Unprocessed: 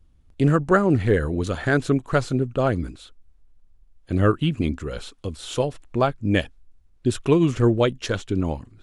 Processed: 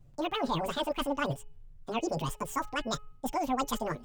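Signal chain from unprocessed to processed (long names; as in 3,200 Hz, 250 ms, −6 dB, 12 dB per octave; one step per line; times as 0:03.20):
reversed playback
downward compressor, threshold −25 dBFS, peak gain reduction 12.5 dB
reversed playback
multi-voice chorus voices 4, 0.7 Hz, delay 17 ms, depth 2.5 ms
change of speed 2.18×
hum removal 422.2 Hz, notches 7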